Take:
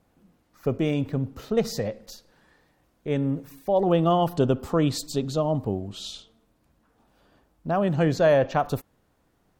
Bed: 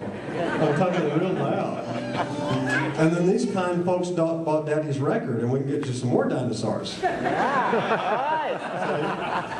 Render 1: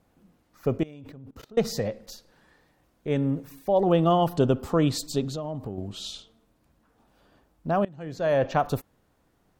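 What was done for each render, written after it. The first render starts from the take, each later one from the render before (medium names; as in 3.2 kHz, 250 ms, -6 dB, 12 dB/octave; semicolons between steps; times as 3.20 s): 0.83–1.58 s: level held to a coarse grid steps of 22 dB; 5.28–5.78 s: compression 4:1, threshold -30 dBFS; 7.85–8.47 s: fade in quadratic, from -22.5 dB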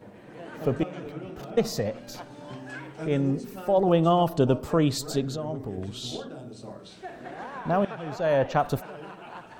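add bed -15.5 dB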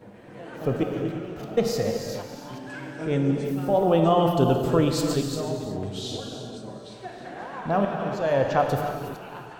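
chunks repeated in reverse 235 ms, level -11 dB; gated-style reverb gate 390 ms flat, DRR 3 dB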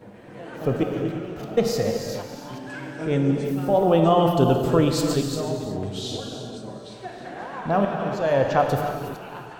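trim +2 dB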